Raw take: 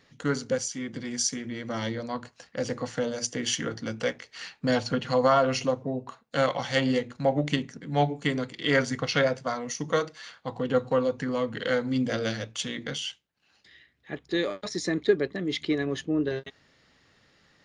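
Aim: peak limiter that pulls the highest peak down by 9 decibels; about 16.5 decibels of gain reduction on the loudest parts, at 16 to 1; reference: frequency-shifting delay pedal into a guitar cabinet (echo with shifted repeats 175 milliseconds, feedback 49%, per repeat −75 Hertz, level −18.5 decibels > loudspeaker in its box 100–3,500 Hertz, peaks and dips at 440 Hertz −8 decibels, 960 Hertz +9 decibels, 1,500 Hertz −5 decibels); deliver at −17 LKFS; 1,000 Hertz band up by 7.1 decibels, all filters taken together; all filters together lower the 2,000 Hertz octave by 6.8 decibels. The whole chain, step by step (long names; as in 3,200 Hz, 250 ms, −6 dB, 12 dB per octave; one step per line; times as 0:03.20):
parametric band 1,000 Hz +7 dB
parametric band 2,000 Hz −8.5 dB
downward compressor 16 to 1, threshold −31 dBFS
brickwall limiter −27 dBFS
echo with shifted repeats 175 ms, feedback 49%, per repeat −75 Hz, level −18.5 dB
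loudspeaker in its box 100–3,500 Hz, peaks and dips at 440 Hz −8 dB, 960 Hz +9 dB, 1,500 Hz −5 dB
level +22.5 dB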